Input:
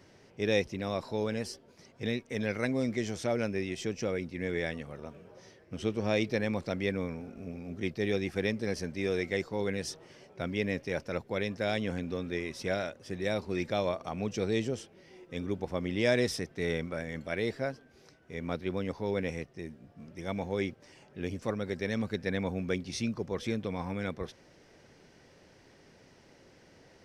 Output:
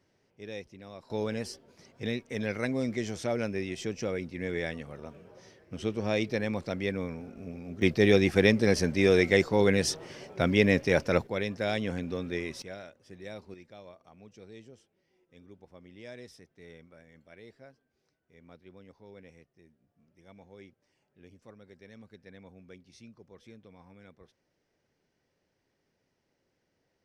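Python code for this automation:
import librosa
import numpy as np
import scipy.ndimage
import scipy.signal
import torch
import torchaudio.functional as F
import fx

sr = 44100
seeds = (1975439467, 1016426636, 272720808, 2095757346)

y = fx.gain(x, sr, db=fx.steps((0.0, -13.0), (1.1, 0.0), (7.82, 9.0), (11.27, 1.0), (12.62, -11.0), (13.54, -19.0)))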